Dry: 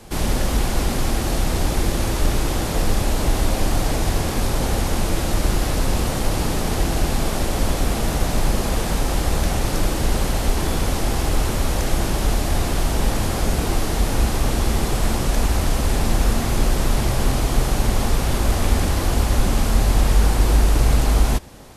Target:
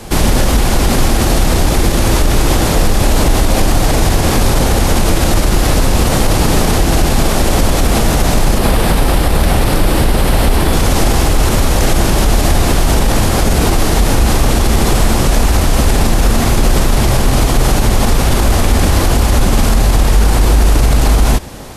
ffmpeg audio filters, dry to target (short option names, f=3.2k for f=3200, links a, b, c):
-filter_complex "[0:a]asettb=1/sr,asplit=3[a][b][c];[a]atrim=end=8.584[d];[b]atrim=start=8.58:end=10.73,asetpts=PTS-STARTPTS,afade=t=in:d=0.004:c=qsin,afade=t=out:st=2.146:d=0.004:c=qsin,equalizer=f=6.5k:w=2.1:g=-8[e];[c]atrim=start=10.726[f];[d][e]acrossfade=d=0.004:c1=hsin:c2=qsin[g];[g][f]acrossfade=d=0.004:c1=qsin:c2=hsin,alimiter=level_in=13.5dB:limit=-1dB:release=50:level=0:latency=1,volume=-1dB"